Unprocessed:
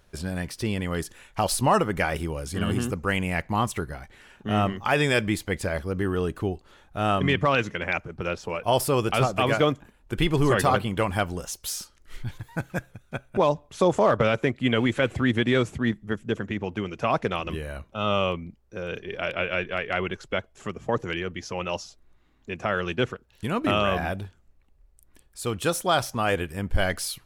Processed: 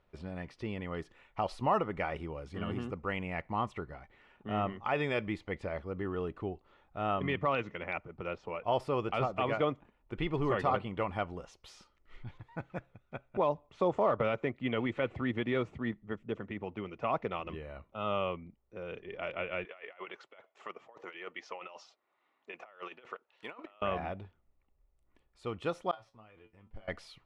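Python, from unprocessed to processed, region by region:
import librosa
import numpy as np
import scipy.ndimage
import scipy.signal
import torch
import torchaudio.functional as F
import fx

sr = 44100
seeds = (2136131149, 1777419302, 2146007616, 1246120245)

y = fx.chain(x, sr, fx.highpass(hz=600.0, slope=12),
    fx.over_compress(threshold_db=-36.0, ratio=-0.5), at=(19.65, 23.82))
y = fx.chain(y, sr, fx.law_mismatch(coded='A'),
    fx.level_steps(step_db=20),
    fx.comb_fb(f0_hz=110.0, decay_s=0.18, harmonics='all', damping=0.0, mix_pct=90), at=(25.91, 26.88))
y = scipy.signal.sosfilt(scipy.signal.butter(2, 2200.0, 'lowpass', fs=sr, output='sos'), y)
y = fx.low_shelf(y, sr, hz=310.0, db=-6.5)
y = fx.notch(y, sr, hz=1600.0, q=5.5)
y = y * 10.0 ** (-6.5 / 20.0)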